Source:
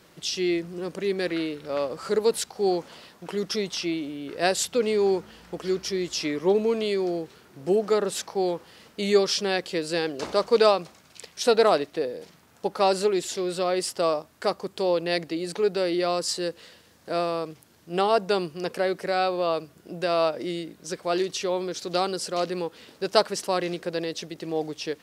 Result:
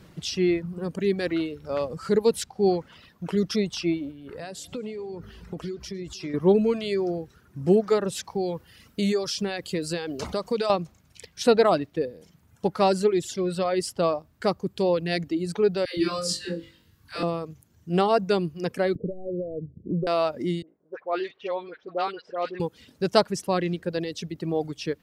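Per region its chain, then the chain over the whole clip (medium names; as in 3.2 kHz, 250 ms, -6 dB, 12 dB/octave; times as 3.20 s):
4.11–6.34 s: compression 5:1, threshold -34 dBFS + two-band feedback delay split 770 Hz, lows 233 ms, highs 105 ms, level -13.5 dB
8.24–10.70 s: treble shelf 5 kHz +8 dB + compression 2.5:1, threshold -26 dBFS
15.85–17.23 s: peaking EQ 640 Hz -12.5 dB 0.96 oct + phase dispersion lows, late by 128 ms, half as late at 490 Hz + flutter echo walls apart 3.6 m, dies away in 0.43 s
18.95–20.07 s: self-modulated delay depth 0.18 ms + steep low-pass 530 Hz 48 dB/octave + three bands compressed up and down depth 70%
20.62–22.60 s: three-band isolator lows -24 dB, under 410 Hz, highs -21 dB, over 3.6 kHz + phase dispersion highs, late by 60 ms, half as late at 1.1 kHz + level-controlled noise filter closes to 490 Hz, open at -25.5 dBFS
whole clip: reverb removal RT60 1.4 s; tone controls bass +14 dB, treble -3 dB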